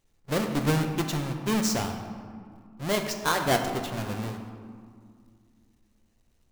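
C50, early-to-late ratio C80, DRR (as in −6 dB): 6.5 dB, 7.5 dB, 4.0 dB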